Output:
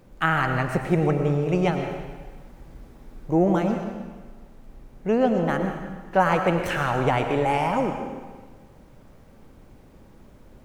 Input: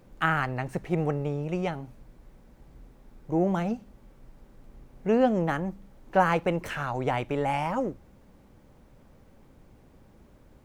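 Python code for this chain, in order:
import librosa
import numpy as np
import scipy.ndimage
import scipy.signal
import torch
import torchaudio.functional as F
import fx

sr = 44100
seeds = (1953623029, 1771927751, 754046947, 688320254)

y = fx.rider(x, sr, range_db=10, speed_s=0.5)
y = fx.rev_freeverb(y, sr, rt60_s=1.4, hf_ratio=0.95, predelay_ms=65, drr_db=5.0)
y = y * librosa.db_to_amplitude(4.0)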